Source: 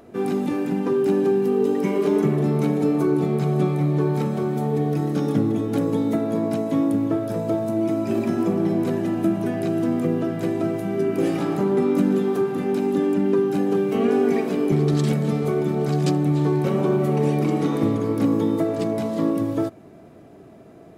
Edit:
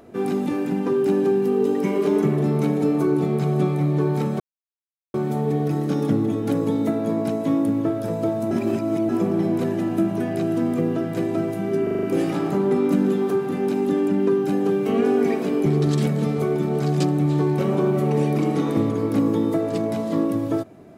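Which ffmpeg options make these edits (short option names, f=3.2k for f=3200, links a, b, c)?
-filter_complex "[0:a]asplit=9[a][b][c][d][e][f][g][h][i];[a]atrim=end=4.4,asetpts=PTS-STARTPTS,afade=t=out:st=4.396:d=0.004:c=hsin,apad=pad_dur=0.74[j];[b]atrim=start=4.4:end=7.772,asetpts=PTS-STARTPTS,afade=t=in:d=0.004:c=hsin[k];[c]atrim=start=7.768:end=8.352,asetpts=PTS-STARTPTS,areverse[l];[d]atrim=start=8.348:end=11.132[m];[e]atrim=start=11.088:end=11.132[n];[f]atrim=start=11.088:end=11.132[o];[g]atrim=start=11.088:end=11.132[p];[h]atrim=start=11.088:end=11.132[q];[i]atrim=start=11.088[r];[j][k]concat=n=2:v=0:a=1[s];[s][l]acrossfade=d=0.004:c1=hsin:c2=hsin[t];[t][m]acrossfade=d=0.004:c1=hsin:c2=hsin[u];[u][n]acrossfade=d=0.004:c1=hsin:c2=hsin[v];[v][o]acrossfade=d=0.004:c1=hsin:c2=hsin[w];[w][p]acrossfade=d=0.004:c1=hsin:c2=hsin[x];[x][q]acrossfade=d=0.004:c1=hsin:c2=hsin[y];[y][r]acrossfade=d=0.004:c1=hsin:c2=hsin"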